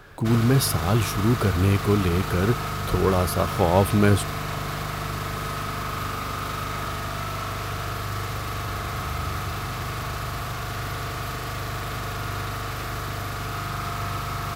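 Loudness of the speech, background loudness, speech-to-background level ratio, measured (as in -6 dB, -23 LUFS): -22.5 LUFS, -29.5 LUFS, 7.0 dB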